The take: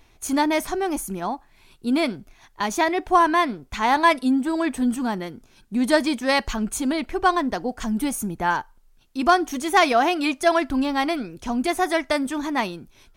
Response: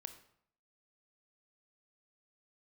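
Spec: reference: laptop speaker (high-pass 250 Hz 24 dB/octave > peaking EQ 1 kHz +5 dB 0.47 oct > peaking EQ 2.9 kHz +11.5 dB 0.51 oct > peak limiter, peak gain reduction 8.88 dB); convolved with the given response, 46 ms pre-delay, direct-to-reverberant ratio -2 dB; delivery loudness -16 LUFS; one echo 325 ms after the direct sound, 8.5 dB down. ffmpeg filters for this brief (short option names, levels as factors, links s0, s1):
-filter_complex "[0:a]aecho=1:1:325:0.376,asplit=2[s0][s1];[1:a]atrim=start_sample=2205,adelay=46[s2];[s1][s2]afir=irnorm=-1:irlink=0,volume=2.11[s3];[s0][s3]amix=inputs=2:normalize=0,highpass=f=250:w=0.5412,highpass=f=250:w=1.3066,equalizer=f=1000:t=o:w=0.47:g=5,equalizer=f=2900:t=o:w=0.51:g=11.5,volume=1.19,alimiter=limit=0.668:level=0:latency=1"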